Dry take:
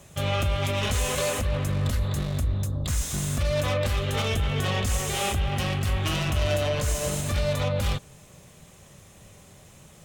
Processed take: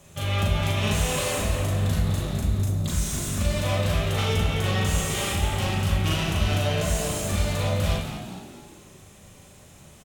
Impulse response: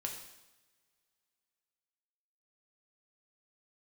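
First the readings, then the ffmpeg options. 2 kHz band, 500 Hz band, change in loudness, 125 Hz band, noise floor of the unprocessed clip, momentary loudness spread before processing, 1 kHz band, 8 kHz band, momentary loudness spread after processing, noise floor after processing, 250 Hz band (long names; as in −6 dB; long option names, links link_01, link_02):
+1.0 dB, −0.5 dB, +1.5 dB, +2.0 dB, −51 dBFS, 3 LU, +1.0 dB, +1.5 dB, 3 LU, −50 dBFS, +3.5 dB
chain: -filter_complex "[0:a]bandreject=frequency=66.39:width_type=h:width=4,bandreject=frequency=132.78:width_type=h:width=4,bandreject=frequency=199.17:width_type=h:width=4,bandreject=frequency=265.56:width_type=h:width=4,bandreject=frequency=331.95:width_type=h:width=4,bandreject=frequency=398.34:width_type=h:width=4,bandreject=frequency=464.73:width_type=h:width=4,bandreject=frequency=531.12:width_type=h:width=4,bandreject=frequency=597.51:width_type=h:width=4,bandreject=frequency=663.9:width_type=h:width=4,bandreject=frequency=730.29:width_type=h:width=4,bandreject=frequency=796.68:width_type=h:width=4,bandreject=frequency=863.07:width_type=h:width=4,bandreject=frequency=929.46:width_type=h:width=4,bandreject=frequency=995.85:width_type=h:width=4,bandreject=frequency=1062.24:width_type=h:width=4,bandreject=frequency=1128.63:width_type=h:width=4,bandreject=frequency=1195.02:width_type=h:width=4,bandreject=frequency=1261.41:width_type=h:width=4,bandreject=frequency=1327.8:width_type=h:width=4,bandreject=frequency=1394.19:width_type=h:width=4,bandreject=frequency=1460.58:width_type=h:width=4,bandreject=frequency=1526.97:width_type=h:width=4,bandreject=frequency=1593.36:width_type=h:width=4,bandreject=frequency=1659.75:width_type=h:width=4,bandreject=frequency=1726.14:width_type=h:width=4,bandreject=frequency=1792.53:width_type=h:width=4,bandreject=frequency=1858.92:width_type=h:width=4,bandreject=frequency=1925.31:width_type=h:width=4,bandreject=frequency=1991.7:width_type=h:width=4,bandreject=frequency=2058.09:width_type=h:width=4,bandreject=frequency=2124.48:width_type=h:width=4,asplit=6[link_01][link_02][link_03][link_04][link_05][link_06];[link_02]adelay=210,afreqshift=63,volume=-9.5dB[link_07];[link_03]adelay=420,afreqshift=126,volume=-15.9dB[link_08];[link_04]adelay=630,afreqshift=189,volume=-22.3dB[link_09];[link_05]adelay=840,afreqshift=252,volume=-28.6dB[link_10];[link_06]adelay=1050,afreqshift=315,volume=-35dB[link_11];[link_01][link_07][link_08][link_09][link_10][link_11]amix=inputs=6:normalize=0,asplit=2[link_12][link_13];[1:a]atrim=start_sample=2205,asetrate=43218,aresample=44100,adelay=38[link_14];[link_13][link_14]afir=irnorm=-1:irlink=0,volume=0.5dB[link_15];[link_12][link_15]amix=inputs=2:normalize=0,volume=-2.5dB"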